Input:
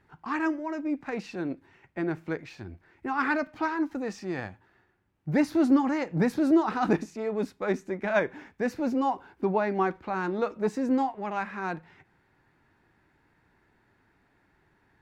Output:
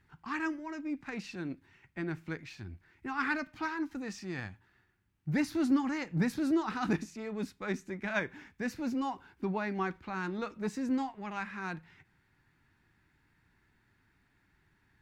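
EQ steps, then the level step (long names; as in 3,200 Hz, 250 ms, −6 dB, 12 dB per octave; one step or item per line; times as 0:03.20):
parametric band 570 Hz −12.5 dB 2 octaves
0.0 dB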